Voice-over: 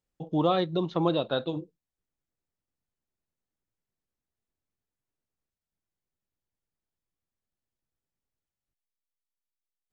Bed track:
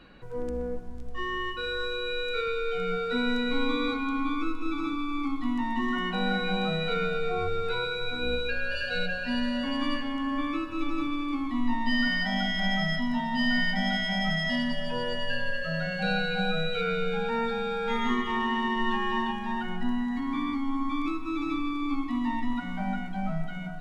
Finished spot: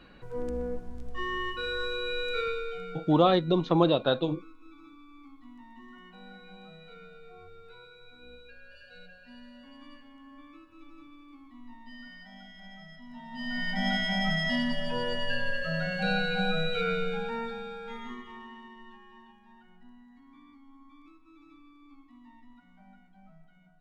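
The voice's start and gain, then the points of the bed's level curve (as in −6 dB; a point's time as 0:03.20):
2.75 s, +3.0 dB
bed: 0:02.47 −1 dB
0:03.33 −21.5 dB
0:12.97 −21.5 dB
0:13.87 −0.5 dB
0:16.91 −0.5 dB
0:19.07 −25.5 dB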